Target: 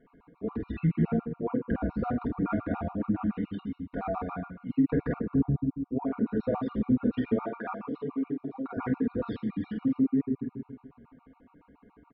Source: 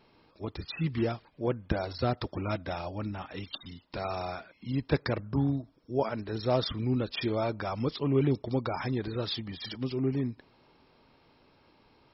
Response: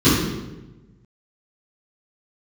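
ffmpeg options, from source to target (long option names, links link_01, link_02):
-filter_complex "[0:a]lowpass=frequency=2000:width=0.5412,lowpass=frequency=2000:width=1.3066,aecho=1:1:4.2:0.68,asplit=2[link_01][link_02];[1:a]atrim=start_sample=2205[link_03];[link_02][link_03]afir=irnorm=-1:irlink=0,volume=-28.5dB[link_04];[link_01][link_04]amix=inputs=2:normalize=0,alimiter=limit=-16.5dB:level=0:latency=1:release=275,asettb=1/sr,asplit=3[link_05][link_06][link_07];[link_05]atrim=end=7.404[link_08];[link_06]atrim=start=7.4:end=8.77,asetpts=PTS-STARTPTS,afade=type=in:duration=0.004:curve=qsin,afade=type=out:start_time=1.366:duration=0.004:curve=qsin,highpass=frequency=650:poles=1[link_09];[link_07]atrim=start=8.766[link_10];[link_08][link_09]acrossfade=duration=0.004:curve1=hsin:curve2=qsin[link_11];[link_11][link_10]acrossfade=duration=0.004:curve1=qsin:curve2=hsin,aecho=1:1:48|78:0.562|0.188,afftfilt=real='re*gt(sin(2*PI*7.1*pts/sr)*(1-2*mod(floor(b*sr/1024/730),2)),0)':imag='im*gt(sin(2*PI*7.1*pts/sr)*(1-2*mod(floor(b*sr/1024/730),2)),0)':win_size=1024:overlap=0.75"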